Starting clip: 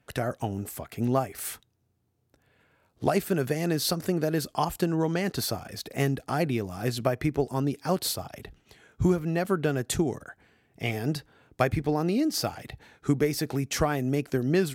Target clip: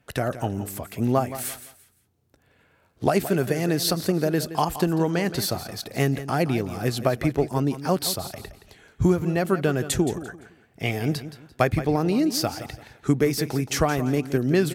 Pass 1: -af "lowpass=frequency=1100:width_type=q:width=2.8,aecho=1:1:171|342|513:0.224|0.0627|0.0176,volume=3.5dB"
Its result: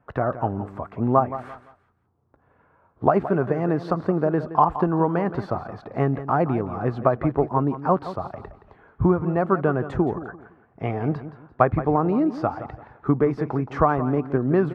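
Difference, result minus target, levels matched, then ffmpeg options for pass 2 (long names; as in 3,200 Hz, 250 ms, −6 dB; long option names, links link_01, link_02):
1,000 Hz band +5.0 dB
-af "aecho=1:1:171|342|513:0.224|0.0627|0.0176,volume=3.5dB"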